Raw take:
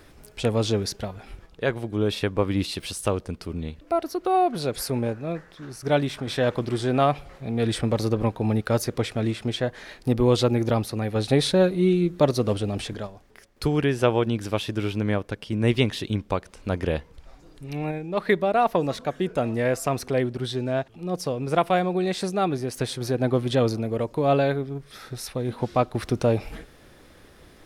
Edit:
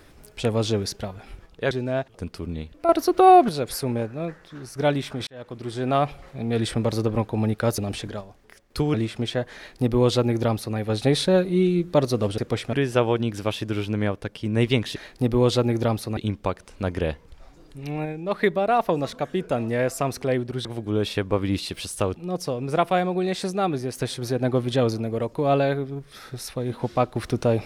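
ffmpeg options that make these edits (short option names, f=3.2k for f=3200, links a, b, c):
-filter_complex "[0:a]asplit=14[a][b][c][d][e][f][g][h][i][j][k][l][m][n];[a]atrim=end=1.712[o];[b]atrim=start=20.508:end=20.952[p];[c]atrim=start=3.218:end=3.962[q];[d]atrim=start=3.958:end=4.562,asetpts=PTS-STARTPTS,volume=8dB[r];[e]atrim=start=4.558:end=6.34,asetpts=PTS-STARTPTS,afade=t=out:st=1.778:d=0.004:c=hsin[s];[f]atrim=start=6.34:end=8.852,asetpts=PTS-STARTPTS,afade=t=in:d=0.79[t];[g]atrim=start=12.638:end=13.802[u];[h]atrim=start=9.198:end=12.642[v];[i]atrim=start=8.848:end=9.202[w];[j]atrim=start=13.798:end=16.032[x];[k]atrim=start=9.818:end=11.032[y];[l]atrim=start=16.028:end=20.512[z];[m]atrim=start=1.708:end=3.222[aa];[n]atrim=start=20.948[ab];[o][p]acrossfade=d=0.004:c1=hsin:c2=hsin[ac];[ac][q]acrossfade=d=0.004:c1=hsin:c2=hsin[ad];[ad][r]acrossfade=d=0.004:c1=hsin:c2=hsin[ae];[s][t]concat=n=2:v=0:a=1[af];[ae][af]acrossfade=d=0.004:c1=hsin:c2=hsin[ag];[ag][u]acrossfade=d=0.004:c1=hsin:c2=hsin[ah];[ah][v]acrossfade=d=0.004:c1=hsin:c2=hsin[ai];[ai][w]acrossfade=d=0.004:c1=hsin:c2=hsin[aj];[aj][x]acrossfade=d=0.004:c1=hsin:c2=hsin[ak];[ak][y]acrossfade=d=0.004:c1=hsin:c2=hsin[al];[al][z]acrossfade=d=0.004:c1=hsin:c2=hsin[am];[am][aa]acrossfade=d=0.004:c1=hsin:c2=hsin[an];[an][ab]acrossfade=d=0.004:c1=hsin:c2=hsin"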